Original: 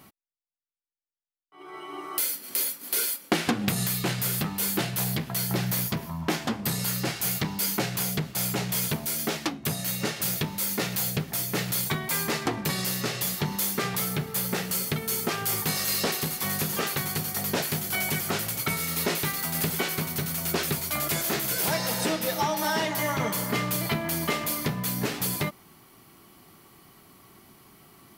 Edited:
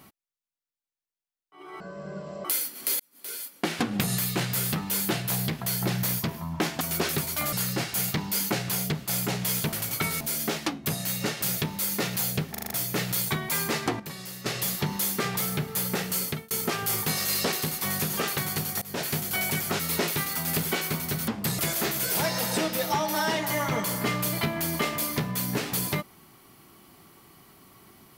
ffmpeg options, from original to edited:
-filter_complex "[0:a]asplit=20[s0][s1][s2][s3][s4][s5][s6][s7][s8][s9][s10][s11][s12][s13][s14][s15][s16][s17][s18][s19];[s0]atrim=end=1.804[s20];[s1]atrim=start=1.8:end=2.13,asetpts=PTS-STARTPTS,asetrate=22491,aresample=44100,atrim=end_sample=28535,asetpts=PTS-STARTPTS[s21];[s2]atrim=start=2.126:end=2.68,asetpts=PTS-STARTPTS,afade=t=out:st=0.55:d=0.004:c=hsin[s22];[s3]atrim=start=2.68:end=6.492,asetpts=PTS-STARTPTS,afade=t=in:d=1.03[s23];[s4]atrim=start=20.348:end=21.072[s24];[s5]atrim=start=6.798:end=9.002[s25];[s6]atrim=start=18.388:end=18.872[s26];[s7]atrim=start=8.998:end=11.342[s27];[s8]atrim=start=11.298:end=11.342[s28];[s9]atrim=start=11.298:end=11.342[s29];[s10]atrim=start=11.298:end=11.342[s30];[s11]atrim=start=11.298:end=11.342[s31];[s12]atrim=start=11.298:end=12.592[s32];[s13]atrim=start=12.588:end=13.052,asetpts=PTS-STARTPTS,volume=0.299[s33];[s14]atrim=start=13.048:end=15.1,asetpts=PTS-STARTPTS,afade=t=out:st=1.802:d=0.25[s34];[s15]atrim=start=15.1:end=17.41,asetpts=PTS-STARTPTS,afade=t=in:d=0.004:c=hsin,afade=t=out:st=2.306:d=0.004:c=hsin:silence=0.0891251[s35];[s16]atrim=start=17.41:end=18.392,asetpts=PTS-STARTPTS,afade=t=in:d=0.28:silence=0.0891251[s36];[s17]atrim=start=18.868:end=20.352[s37];[s18]atrim=start=6.488:end=6.802[s38];[s19]atrim=start=21.068[s39];[s20][s21]acrossfade=d=0.004:c1=hsin:c2=hsin[s40];[s22][s23]concat=n=2:v=0:a=1[s41];[s40][s41]acrossfade=d=0.004:c1=hsin:c2=hsin[s42];[s42][s24]acrossfade=d=0.004:c1=hsin:c2=hsin[s43];[s43][s25]acrossfade=d=0.004:c1=hsin:c2=hsin[s44];[s44][s26]acrossfade=d=0.004:c1=hsin:c2=hsin[s45];[s45][s27]acrossfade=d=0.004:c1=hsin:c2=hsin[s46];[s46][s28]acrossfade=d=0.004:c1=hsin:c2=hsin[s47];[s47][s29]acrossfade=d=0.004:c1=hsin:c2=hsin[s48];[s48][s30]acrossfade=d=0.004:c1=hsin:c2=hsin[s49];[s49][s31]acrossfade=d=0.004:c1=hsin:c2=hsin[s50];[s50][s32]acrossfade=d=0.004:c1=hsin:c2=hsin[s51];[s51][s33]acrossfade=d=0.004:c1=hsin:c2=hsin[s52];[s34][s35][s36]concat=n=3:v=0:a=1[s53];[s52][s53]acrossfade=d=0.004:c1=hsin:c2=hsin[s54];[s54][s37]acrossfade=d=0.004:c1=hsin:c2=hsin[s55];[s55][s38]acrossfade=d=0.004:c1=hsin:c2=hsin[s56];[s56][s39]acrossfade=d=0.004:c1=hsin:c2=hsin"

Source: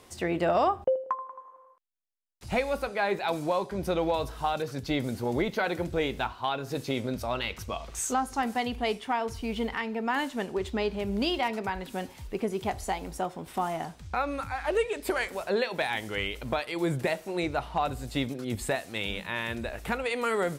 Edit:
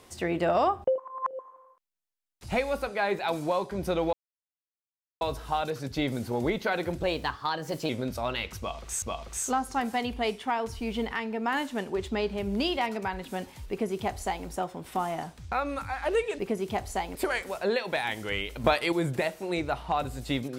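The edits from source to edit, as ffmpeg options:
-filter_complex "[0:a]asplit=11[s0][s1][s2][s3][s4][s5][s6][s7][s8][s9][s10];[s0]atrim=end=0.982[s11];[s1]atrim=start=0.978:end=1.392,asetpts=PTS-STARTPTS,areverse[s12];[s2]atrim=start=1.388:end=4.13,asetpts=PTS-STARTPTS,afade=t=out:st=2.738:d=0.004:c=hsin,apad=pad_dur=1.08[s13];[s3]atrim=start=4.13:end=5.954,asetpts=PTS-STARTPTS,afade=t=in:d=0.004:c=hsin[s14];[s4]atrim=start=5.95:end=6.95,asetpts=PTS-STARTPTS,asetrate=51156,aresample=44100,atrim=end_sample=38017,asetpts=PTS-STARTPTS[s15];[s5]atrim=start=6.946:end=8.082[s16];[s6]atrim=start=7.638:end=15.012[s17];[s7]atrim=start=12.318:end=13.082[s18];[s8]atrim=start=15.008:end=16.502[s19];[s9]atrim=start=16.498:end=16.782,asetpts=PTS-STARTPTS,volume=2.11[s20];[s10]atrim=start=16.778[s21];[s11][s12]acrossfade=d=0.004:c1=hsin:c2=hsin[s22];[s13][s14]concat=n=2:v=0:a=1[s23];[s22][s23]acrossfade=d=0.004:c1=hsin:c2=hsin[s24];[s24][s15]acrossfade=d=0.004:c1=hsin:c2=hsin[s25];[s25][s16]acrossfade=d=0.004:c1=hsin:c2=hsin[s26];[s26][s17]acrossfade=d=0.004:c1=hsin:c2=hsin[s27];[s27][s18]acrossfade=d=0.004:c1=hsin:c2=hsin[s28];[s28][s19]acrossfade=d=0.004:c1=hsin:c2=hsin[s29];[s29][s20]acrossfade=d=0.004:c1=hsin:c2=hsin[s30];[s30][s21]acrossfade=d=0.004:c1=hsin:c2=hsin"

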